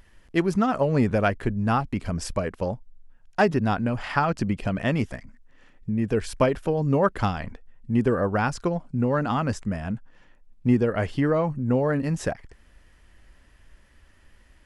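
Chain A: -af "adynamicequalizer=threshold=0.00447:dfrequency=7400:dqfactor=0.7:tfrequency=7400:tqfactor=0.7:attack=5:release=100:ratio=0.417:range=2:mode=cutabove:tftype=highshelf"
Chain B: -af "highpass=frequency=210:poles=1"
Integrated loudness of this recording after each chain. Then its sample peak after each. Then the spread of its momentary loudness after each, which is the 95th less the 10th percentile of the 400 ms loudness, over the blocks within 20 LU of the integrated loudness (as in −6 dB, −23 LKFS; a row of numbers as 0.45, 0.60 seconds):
−25.0, −27.0 LKFS; −7.5, −7.0 dBFS; 9, 10 LU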